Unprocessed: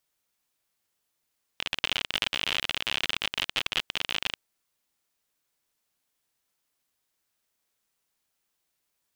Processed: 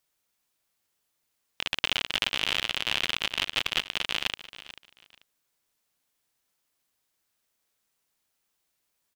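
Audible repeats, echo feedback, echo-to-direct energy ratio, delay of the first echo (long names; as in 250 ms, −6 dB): 2, 23%, −15.5 dB, 439 ms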